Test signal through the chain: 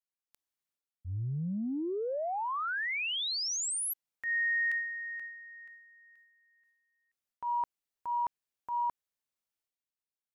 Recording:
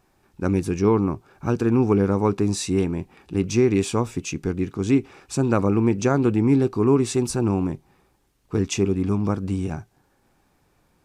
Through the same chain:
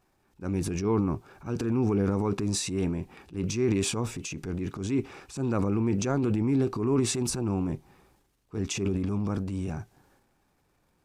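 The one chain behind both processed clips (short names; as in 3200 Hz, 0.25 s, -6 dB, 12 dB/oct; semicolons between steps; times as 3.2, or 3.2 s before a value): transient shaper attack -7 dB, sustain +8 dB; gain -6.5 dB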